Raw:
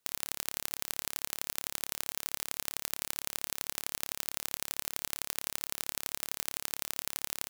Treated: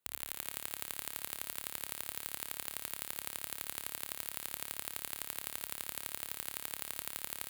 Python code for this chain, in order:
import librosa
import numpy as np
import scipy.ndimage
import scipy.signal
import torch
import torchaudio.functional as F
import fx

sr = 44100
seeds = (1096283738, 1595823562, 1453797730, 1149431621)

p1 = scipy.signal.sosfilt(scipy.signal.butter(4, 50.0, 'highpass', fs=sr, output='sos'), x)
p2 = fx.peak_eq(p1, sr, hz=5600.0, db=-11.0, octaves=0.48)
p3 = p2 + fx.echo_wet_highpass(p2, sr, ms=72, feedback_pct=82, hz=1700.0, wet_db=-12, dry=0)
y = p3 * librosa.db_to_amplitude(-4.0)